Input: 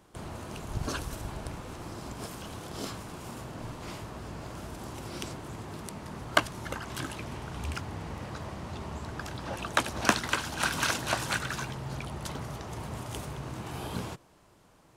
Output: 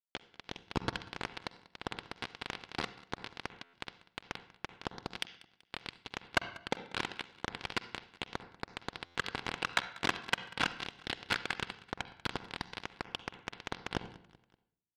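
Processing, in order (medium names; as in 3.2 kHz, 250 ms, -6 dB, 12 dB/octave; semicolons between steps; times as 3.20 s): high-pass 83 Hz 12 dB/octave; de-hum 213.9 Hz, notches 3; compression 6:1, threshold -46 dBFS, peak gain reduction 26.5 dB; time-frequency box 10.77–11.22 s, 660–2400 Hz -13 dB; companded quantiser 2-bit; on a send at -17 dB: reverberation RT60 0.60 s, pre-delay 46 ms; on the sum: level rider gain up to 8.5 dB; low-pass 4.1 kHz 24 dB/octave; saturation -23 dBFS, distortion -11 dB; comb of notches 610 Hz; feedback delay 191 ms, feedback 46%, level -21 dB; buffer glitch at 3.63/9.05 s, samples 512, times 8; trim +7.5 dB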